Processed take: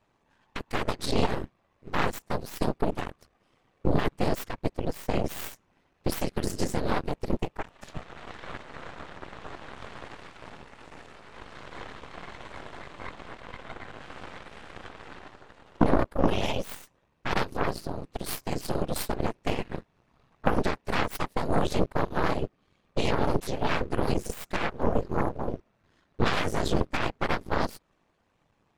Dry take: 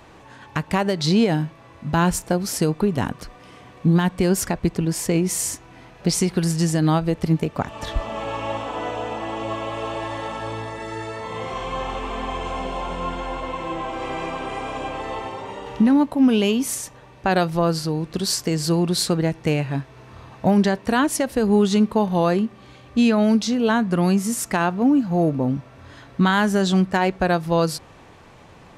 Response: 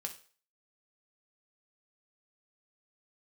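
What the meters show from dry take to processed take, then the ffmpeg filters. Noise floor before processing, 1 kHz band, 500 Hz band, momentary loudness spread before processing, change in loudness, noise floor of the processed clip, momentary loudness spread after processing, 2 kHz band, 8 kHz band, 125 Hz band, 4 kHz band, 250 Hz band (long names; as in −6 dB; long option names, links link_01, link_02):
−47 dBFS, −7.0 dB, −8.0 dB, 12 LU, −8.5 dB, −71 dBFS, 17 LU, −6.5 dB, −15.0 dB, −10.0 dB, −8.5 dB, −13.0 dB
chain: -af "afftfilt=real='hypot(re,im)*cos(2*PI*random(0))':imag='hypot(re,im)*sin(2*PI*random(1))':win_size=512:overlap=0.75,aeval=exprs='0.376*(cos(1*acos(clip(val(0)/0.376,-1,1)))-cos(1*PI/2))+0.119*(cos(3*acos(clip(val(0)/0.376,-1,1)))-cos(3*PI/2))+0.00422*(cos(5*acos(clip(val(0)/0.376,-1,1)))-cos(5*PI/2))+0.075*(cos(6*acos(clip(val(0)/0.376,-1,1)))-cos(6*PI/2))':channel_layout=same,volume=1.5dB"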